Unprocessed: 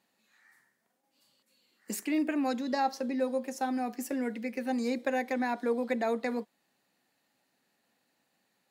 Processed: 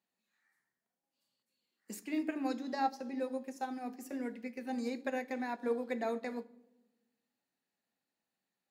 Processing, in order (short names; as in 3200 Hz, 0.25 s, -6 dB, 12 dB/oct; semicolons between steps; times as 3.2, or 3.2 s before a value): on a send at -10 dB: reverb RT60 1.2 s, pre-delay 3 ms; on the sum: upward expander 1.5:1, over -45 dBFS; gain -4 dB